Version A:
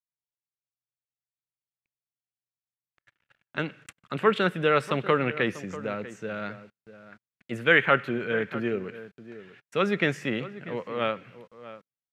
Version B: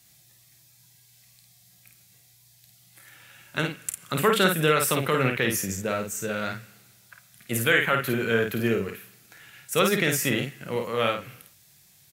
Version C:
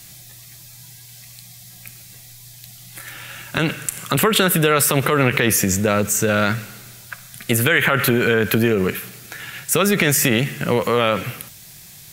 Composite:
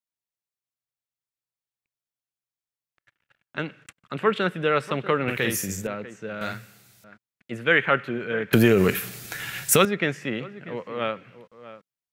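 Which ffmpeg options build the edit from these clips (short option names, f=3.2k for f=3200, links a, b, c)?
-filter_complex "[1:a]asplit=2[a][b];[0:a]asplit=4[c][d][e][f];[c]atrim=end=5.282[g];[a]atrim=start=5.278:end=5.872[h];[d]atrim=start=5.868:end=6.412[i];[b]atrim=start=6.408:end=7.042[j];[e]atrim=start=7.038:end=8.532[k];[2:a]atrim=start=8.528:end=9.852[l];[f]atrim=start=9.848[m];[g][h]acrossfade=d=0.004:c1=hsin:c2=hsin[n];[n][i]acrossfade=d=0.004:c1=hsin:c2=hsin[o];[o][j]acrossfade=d=0.004:c1=hsin:c2=hsin[p];[p][k]acrossfade=d=0.004:c1=hsin:c2=hsin[q];[q][l]acrossfade=d=0.004:c1=hsin:c2=hsin[r];[r][m]acrossfade=d=0.004:c1=hsin:c2=hsin"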